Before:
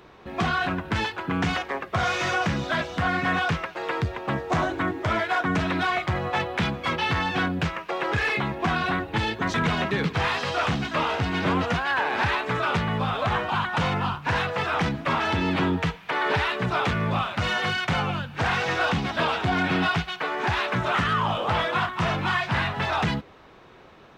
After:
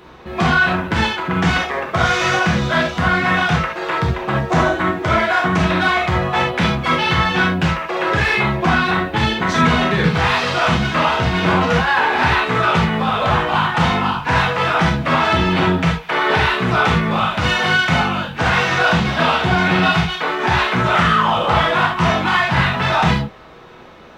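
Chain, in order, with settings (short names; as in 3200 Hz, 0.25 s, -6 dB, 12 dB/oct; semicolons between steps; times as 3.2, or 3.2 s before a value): non-linear reverb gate 0.1 s flat, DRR -1.5 dB; gain +5 dB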